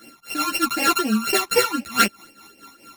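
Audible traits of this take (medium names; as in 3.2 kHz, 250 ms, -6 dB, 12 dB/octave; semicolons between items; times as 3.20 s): a buzz of ramps at a fixed pitch in blocks of 32 samples; phasing stages 12, 4 Hz, lowest notch 490–1300 Hz; tremolo triangle 4.6 Hz, depth 75%; a shimmering, thickened sound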